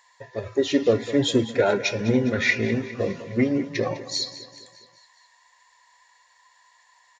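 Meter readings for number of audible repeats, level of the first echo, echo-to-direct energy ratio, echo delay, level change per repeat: 4, −15.0 dB, −13.5 dB, 204 ms, −5.0 dB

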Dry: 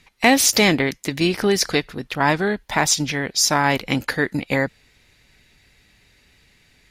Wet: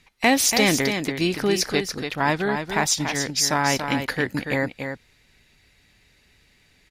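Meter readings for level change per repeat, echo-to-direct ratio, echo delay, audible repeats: repeats not evenly spaced, −7.0 dB, 285 ms, 1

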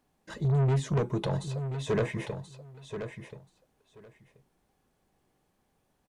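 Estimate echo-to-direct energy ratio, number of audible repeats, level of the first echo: −9.0 dB, 2, −9.0 dB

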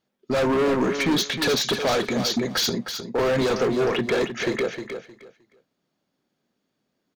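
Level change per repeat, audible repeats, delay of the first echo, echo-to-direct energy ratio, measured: −13.5 dB, 2, 310 ms, −8.5 dB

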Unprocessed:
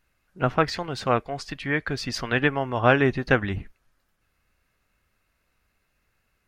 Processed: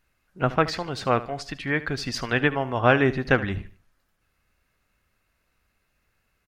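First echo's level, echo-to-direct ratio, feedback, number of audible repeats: −16.5 dB, −16.0 dB, 33%, 2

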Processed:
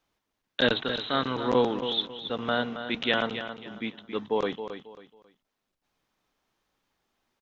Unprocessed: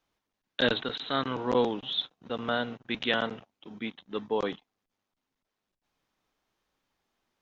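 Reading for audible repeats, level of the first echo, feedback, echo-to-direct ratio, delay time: 3, −10.0 dB, 29%, −9.5 dB, 272 ms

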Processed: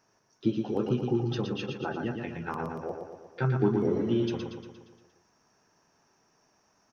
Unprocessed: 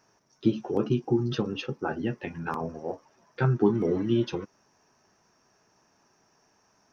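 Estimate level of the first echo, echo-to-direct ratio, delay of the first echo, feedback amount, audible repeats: −5.0 dB, −3.5 dB, 117 ms, 56%, 6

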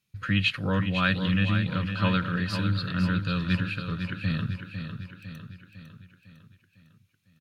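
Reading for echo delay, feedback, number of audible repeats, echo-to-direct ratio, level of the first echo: 503 ms, 53%, 5, −6.5 dB, −8.0 dB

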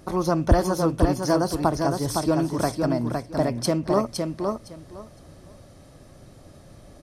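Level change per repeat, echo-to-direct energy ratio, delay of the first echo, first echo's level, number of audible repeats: −15.0 dB, −4.5 dB, 511 ms, −4.5 dB, 3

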